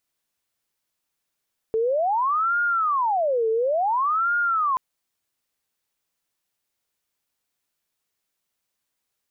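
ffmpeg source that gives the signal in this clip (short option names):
-f lavfi -i "aevalsrc='0.112*sin(2*PI*(931.5*t-488.5/(2*PI*0.57)*sin(2*PI*0.57*t)))':d=3.03:s=44100"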